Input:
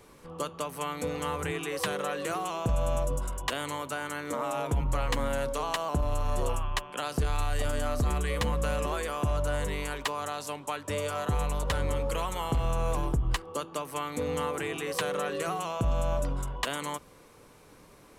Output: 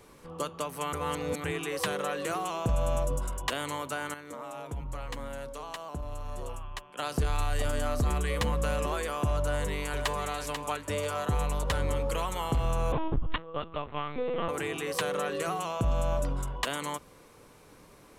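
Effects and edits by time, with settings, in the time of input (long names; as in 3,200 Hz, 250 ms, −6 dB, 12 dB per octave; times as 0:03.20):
0:00.93–0:01.44: reverse
0:04.14–0:06.99: clip gain −9 dB
0:09.44–0:10.27: delay throw 490 ms, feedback 25%, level −6.5 dB
0:12.92–0:14.49: linear-prediction vocoder at 8 kHz pitch kept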